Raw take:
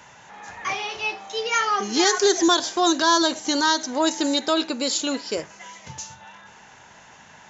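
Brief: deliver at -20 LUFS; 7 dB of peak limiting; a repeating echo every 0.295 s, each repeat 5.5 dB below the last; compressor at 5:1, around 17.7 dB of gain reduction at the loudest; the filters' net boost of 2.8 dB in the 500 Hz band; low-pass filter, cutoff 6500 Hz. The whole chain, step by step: LPF 6500 Hz; bell 500 Hz +4 dB; compressor 5:1, threshold -34 dBFS; limiter -28.5 dBFS; feedback echo 0.295 s, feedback 53%, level -5.5 dB; gain +17 dB

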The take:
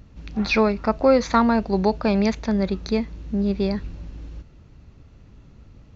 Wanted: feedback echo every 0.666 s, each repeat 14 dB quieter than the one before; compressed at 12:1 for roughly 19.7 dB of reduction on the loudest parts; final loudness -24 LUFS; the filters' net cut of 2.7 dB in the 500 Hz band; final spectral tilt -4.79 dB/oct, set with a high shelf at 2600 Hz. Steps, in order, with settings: bell 500 Hz -3.5 dB; high shelf 2600 Hz +6.5 dB; compressor 12:1, threshold -33 dBFS; feedback echo 0.666 s, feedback 20%, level -14 dB; gain +14 dB

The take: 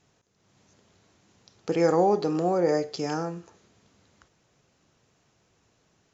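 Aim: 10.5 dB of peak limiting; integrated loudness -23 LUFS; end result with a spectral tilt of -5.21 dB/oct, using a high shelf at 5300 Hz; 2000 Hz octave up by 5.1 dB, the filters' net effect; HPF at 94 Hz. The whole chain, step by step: HPF 94 Hz; bell 2000 Hz +7 dB; high shelf 5300 Hz -5 dB; gain +7.5 dB; limiter -12.5 dBFS

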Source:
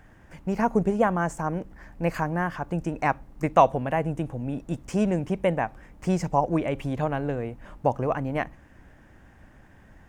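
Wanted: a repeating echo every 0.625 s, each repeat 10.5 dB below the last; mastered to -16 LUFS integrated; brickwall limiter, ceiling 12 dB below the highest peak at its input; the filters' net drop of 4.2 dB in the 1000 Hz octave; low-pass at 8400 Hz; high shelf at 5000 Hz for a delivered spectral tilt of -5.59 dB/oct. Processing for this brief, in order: LPF 8400 Hz; bell 1000 Hz -5.5 dB; high shelf 5000 Hz -4.5 dB; limiter -20 dBFS; feedback echo 0.625 s, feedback 30%, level -10.5 dB; gain +15.5 dB

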